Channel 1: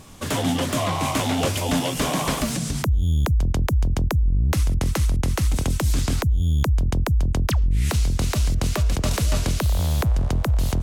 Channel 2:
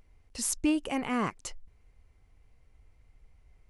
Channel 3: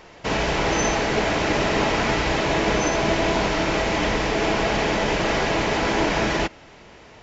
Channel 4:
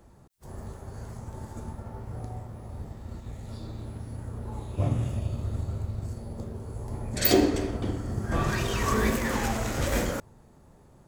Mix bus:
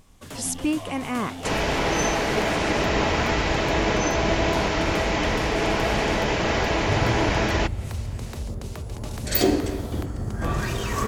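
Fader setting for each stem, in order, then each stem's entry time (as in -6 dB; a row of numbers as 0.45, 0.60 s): -13.5, +2.5, -1.5, +0.5 dB; 0.00, 0.00, 1.20, 2.10 s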